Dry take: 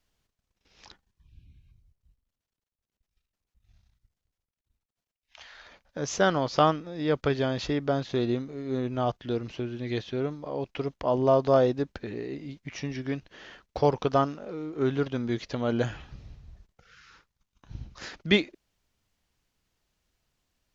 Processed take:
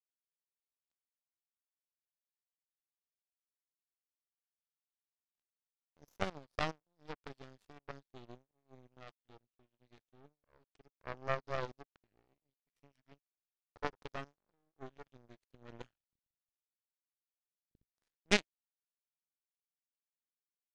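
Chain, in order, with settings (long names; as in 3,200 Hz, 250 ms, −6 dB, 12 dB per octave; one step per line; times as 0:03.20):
gain on one half-wave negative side −12 dB
power curve on the samples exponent 3
level +2.5 dB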